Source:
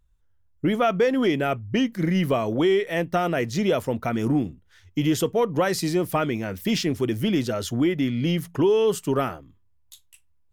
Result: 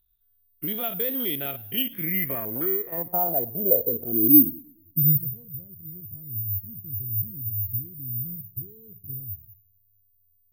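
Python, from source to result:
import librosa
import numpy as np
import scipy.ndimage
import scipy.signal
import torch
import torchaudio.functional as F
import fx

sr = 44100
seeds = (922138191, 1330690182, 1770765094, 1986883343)

y = fx.spec_steps(x, sr, hold_ms=50)
y = fx.dynamic_eq(y, sr, hz=1100.0, q=1.2, threshold_db=-39.0, ratio=4.0, max_db=-5)
y = fx.filter_sweep_lowpass(y, sr, from_hz=3800.0, to_hz=100.0, start_s=1.54, end_s=5.54, q=7.3)
y = (np.kron(y[::3], np.eye(3)[0]) * 3)[:len(y)]
y = fx.echo_warbled(y, sr, ms=106, feedback_pct=42, rate_hz=2.8, cents=142, wet_db=-22.0)
y = y * librosa.db_to_amplitude(-10.0)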